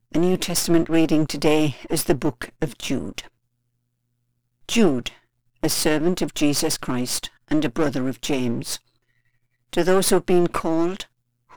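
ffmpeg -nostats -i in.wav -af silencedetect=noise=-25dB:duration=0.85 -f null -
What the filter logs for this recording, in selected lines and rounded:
silence_start: 3.20
silence_end: 4.69 | silence_duration: 1.49
silence_start: 8.76
silence_end: 9.73 | silence_duration: 0.98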